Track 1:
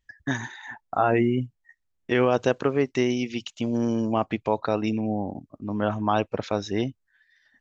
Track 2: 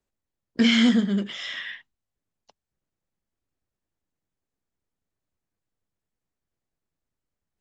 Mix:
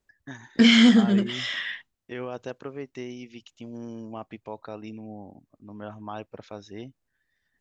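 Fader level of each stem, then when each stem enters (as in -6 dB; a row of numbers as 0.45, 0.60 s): -13.5, +3.0 dB; 0.00, 0.00 s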